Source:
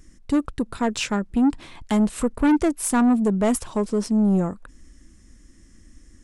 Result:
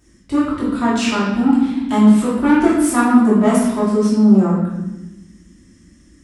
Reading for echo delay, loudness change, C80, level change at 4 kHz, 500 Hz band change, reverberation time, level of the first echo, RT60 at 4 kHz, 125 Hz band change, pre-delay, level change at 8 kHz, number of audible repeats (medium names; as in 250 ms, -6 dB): no echo, +7.0 dB, 4.0 dB, +5.0 dB, +6.0 dB, 1.0 s, no echo, 0.90 s, +7.5 dB, 3 ms, +2.0 dB, no echo